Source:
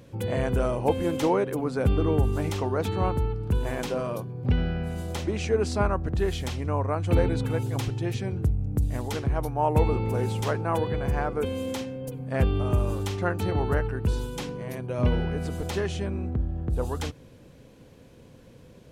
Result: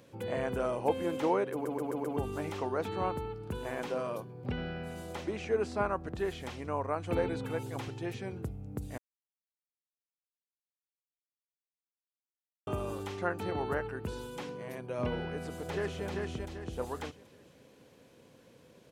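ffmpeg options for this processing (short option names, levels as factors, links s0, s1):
-filter_complex "[0:a]asplit=2[s0][s1];[s1]afade=t=in:st=15.29:d=0.01,afade=t=out:st=16.06:d=0.01,aecho=0:1:390|780|1170|1560|1950:0.707946|0.247781|0.0867234|0.0303532|0.0106236[s2];[s0][s2]amix=inputs=2:normalize=0,asplit=8[s3][s4][s5][s6][s7][s8][s9][s10];[s3]atrim=end=1.652[s11];[s4]atrim=start=1.518:end=1.652[s12];[s5]atrim=start=1.518:end=1.652[s13];[s6]atrim=start=1.518:end=1.652[s14];[s7]atrim=start=1.518:end=1.652[s15];[s8]atrim=start=2.168:end=8.98,asetpts=PTS-STARTPTS,afade=t=out:st=6.808:d=0.004:c=hsin[s16];[s9]atrim=start=8.98:end=12.67,asetpts=PTS-STARTPTS,volume=0[s17];[s10]atrim=start=12.67,asetpts=PTS-STARTPTS,afade=t=in:d=0.004:c=hsin[s18];[s11][s12]acrossfade=d=0.004:c1=hsin:c2=hsin[s19];[s19][s13]acrossfade=d=0.004:c1=hsin:c2=hsin[s20];[s20][s14]acrossfade=d=0.004:c1=hsin:c2=hsin[s21];[s21][s15]acrossfade=d=0.004:c1=hsin:c2=hsin[s22];[s16][s17][s18]concat=n=3:v=0:a=1[s23];[s22][s23]acrossfade=d=0.004:c1=hsin:c2=hsin,acrossover=split=2500[s24][s25];[s25]acompressor=threshold=0.00447:ratio=4:attack=1:release=60[s26];[s24][s26]amix=inputs=2:normalize=0,highpass=f=340:p=1,volume=0.668"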